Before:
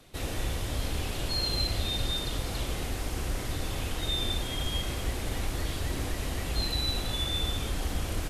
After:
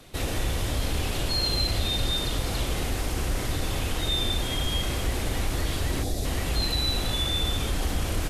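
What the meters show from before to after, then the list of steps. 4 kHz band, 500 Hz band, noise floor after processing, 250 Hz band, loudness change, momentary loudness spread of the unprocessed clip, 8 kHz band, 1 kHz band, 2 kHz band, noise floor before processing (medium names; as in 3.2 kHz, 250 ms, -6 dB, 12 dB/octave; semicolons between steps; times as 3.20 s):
+4.0 dB, +4.5 dB, -30 dBFS, +4.5 dB, +4.0 dB, 5 LU, +4.5 dB, +4.5 dB, +4.5 dB, -35 dBFS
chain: time-frequency box 6.03–6.25 s, 820–3300 Hz -12 dB; in parallel at 0 dB: peak limiter -26 dBFS, peak gain reduction 9 dB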